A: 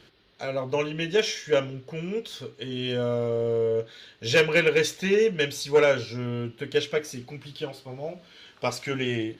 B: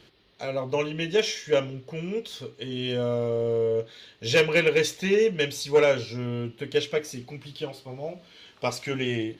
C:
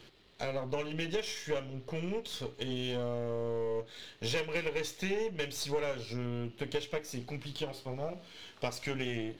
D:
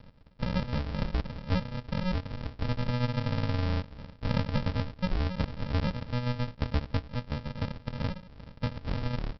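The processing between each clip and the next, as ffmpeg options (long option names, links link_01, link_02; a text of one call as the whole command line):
ffmpeg -i in.wav -af "equalizer=frequency=1500:width_type=o:width=0.28:gain=-5.5" out.wav
ffmpeg -i in.wav -af "aeval=exprs='if(lt(val(0),0),0.447*val(0),val(0))':channel_layout=same,acompressor=threshold=-34dB:ratio=4,volume=2dB" out.wav
ffmpeg -i in.wav -af "equalizer=frequency=1100:width_type=o:width=0.43:gain=-4,aresample=11025,acrusher=samples=30:mix=1:aa=0.000001,aresample=44100,volume=5.5dB" out.wav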